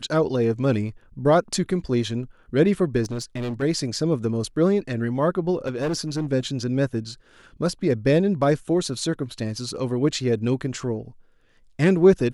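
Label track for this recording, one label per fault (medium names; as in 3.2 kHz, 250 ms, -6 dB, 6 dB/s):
3.030000	3.630000	clipped -25 dBFS
5.670000	6.330000	clipped -21 dBFS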